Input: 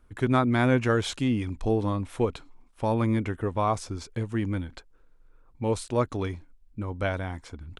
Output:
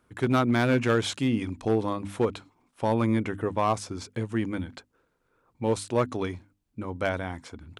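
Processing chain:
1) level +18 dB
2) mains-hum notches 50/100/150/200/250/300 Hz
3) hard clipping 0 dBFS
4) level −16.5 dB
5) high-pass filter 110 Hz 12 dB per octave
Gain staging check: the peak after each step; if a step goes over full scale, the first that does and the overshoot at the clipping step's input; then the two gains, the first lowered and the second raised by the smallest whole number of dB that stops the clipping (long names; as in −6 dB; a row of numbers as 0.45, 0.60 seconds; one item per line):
+8.5, +7.5, 0.0, −16.5, −11.0 dBFS
step 1, 7.5 dB
step 1 +10 dB, step 4 −8.5 dB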